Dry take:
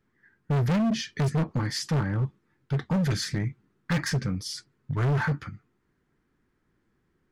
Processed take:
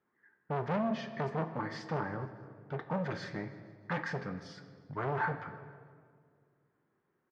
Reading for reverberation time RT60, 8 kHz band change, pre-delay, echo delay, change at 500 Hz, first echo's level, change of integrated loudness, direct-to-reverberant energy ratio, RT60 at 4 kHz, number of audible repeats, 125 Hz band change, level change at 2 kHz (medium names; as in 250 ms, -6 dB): 2.1 s, -23.5 dB, 5 ms, 156 ms, -2.5 dB, -21.5 dB, -9.0 dB, 8.5 dB, 1.3 s, 3, -14.0 dB, -5.0 dB